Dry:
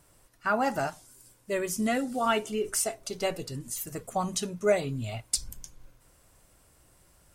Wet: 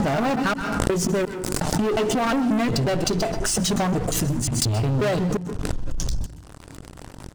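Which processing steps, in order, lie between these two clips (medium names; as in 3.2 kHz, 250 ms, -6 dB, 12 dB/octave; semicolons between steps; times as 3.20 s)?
slices played last to first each 179 ms, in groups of 5; low-pass 6.3 kHz 12 dB/octave; bass shelf 420 Hz +11.5 dB; band-stop 2.2 kHz, Q 6.3; waveshaping leveller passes 5; compression 6:1, threshold -22 dBFS, peak gain reduction 10 dB; reverberation RT60 0.40 s, pre-delay 122 ms, DRR 15 dB; swell ahead of each attack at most 28 dB/s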